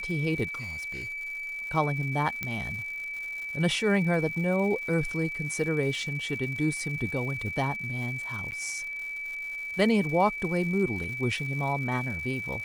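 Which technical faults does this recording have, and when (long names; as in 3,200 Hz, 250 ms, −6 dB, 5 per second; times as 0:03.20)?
surface crackle 250 per second −38 dBFS
whistle 2,300 Hz −33 dBFS
0:00.53–0:01.67: clipping −33 dBFS
0:02.43: click −16 dBFS
0:08.51–0:08.52: drop-out 9.5 ms
0:11.04: drop-out 3.6 ms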